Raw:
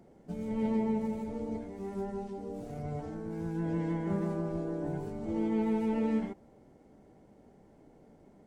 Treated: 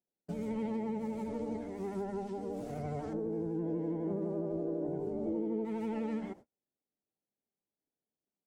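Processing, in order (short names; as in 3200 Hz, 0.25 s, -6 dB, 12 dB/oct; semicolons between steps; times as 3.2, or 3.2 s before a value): 3.13–5.65 EQ curve 120 Hz 0 dB, 460 Hz +9 dB, 1500 Hz -10 dB; vibrato 12 Hz 53 cents; low shelf 110 Hz -9.5 dB; compressor 5:1, threshold -36 dBFS, peak gain reduction 13 dB; gate -52 dBFS, range -41 dB; gain +3 dB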